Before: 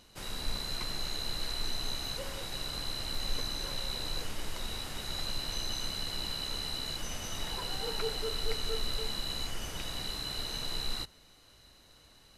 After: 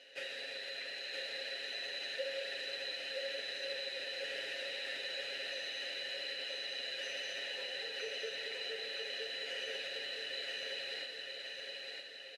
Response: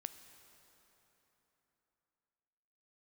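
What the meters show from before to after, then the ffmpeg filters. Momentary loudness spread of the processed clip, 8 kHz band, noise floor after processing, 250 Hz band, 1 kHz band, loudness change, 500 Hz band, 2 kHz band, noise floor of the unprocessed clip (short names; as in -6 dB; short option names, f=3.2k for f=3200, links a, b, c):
3 LU, -12.5 dB, -47 dBFS, -16.5 dB, -12.0 dB, -4.0 dB, -0.5 dB, +4.5 dB, -59 dBFS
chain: -filter_complex "[0:a]highpass=160,tiltshelf=f=970:g=-8.5,alimiter=level_in=2.5dB:limit=-24dB:level=0:latency=1,volume=-2.5dB,flanger=delay=2.6:depth=9.6:regen=-79:speed=0.62:shape=triangular,asplit=3[a][b][c];[a]bandpass=f=530:t=q:w=8,volume=0dB[d];[b]bandpass=f=1.84k:t=q:w=8,volume=-6dB[e];[c]bandpass=f=2.48k:t=q:w=8,volume=-9dB[f];[d][e][f]amix=inputs=3:normalize=0,acompressor=threshold=-58dB:ratio=6,highshelf=f=4.8k:g=-6.5,aecho=1:1:7.3:0.77,aecho=1:1:967|1934|2901|3868|4835|5802:0.668|0.314|0.148|0.0694|0.0326|0.0153,asplit=2[g][h];[1:a]atrim=start_sample=2205,asetrate=22932,aresample=44100[i];[h][i]afir=irnorm=-1:irlink=0,volume=6.5dB[j];[g][j]amix=inputs=2:normalize=0,volume=8.5dB"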